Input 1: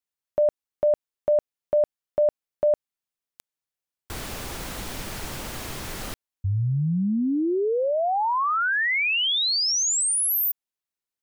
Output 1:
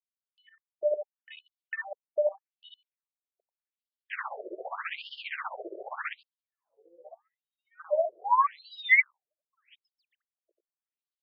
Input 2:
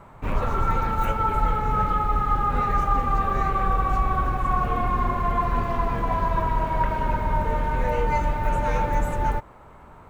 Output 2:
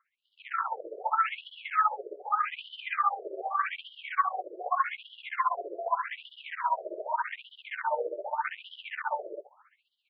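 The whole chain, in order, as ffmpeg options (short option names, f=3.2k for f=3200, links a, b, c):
-af "asoftclip=type=tanh:threshold=-21.5dB,acompressor=threshold=-30dB:ratio=5:attack=6:release=35:knee=6,aemphasis=mode=reproduction:type=50kf,aecho=1:1:90:0.335,aresample=11025,aresample=44100,equalizer=f=420:w=0.43:g=-11.5,tremolo=f=15:d=0.71,dynaudnorm=f=280:g=3:m=14.5dB,afwtdn=0.0178,afftfilt=real='re*between(b*sr/1024,450*pow(4100/450,0.5+0.5*sin(2*PI*0.83*pts/sr))/1.41,450*pow(4100/450,0.5+0.5*sin(2*PI*0.83*pts/sr))*1.41)':imag='im*between(b*sr/1024,450*pow(4100/450,0.5+0.5*sin(2*PI*0.83*pts/sr))/1.41,450*pow(4100/450,0.5+0.5*sin(2*PI*0.83*pts/sr))*1.41)':win_size=1024:overlap=0.75,volume=4.5dB"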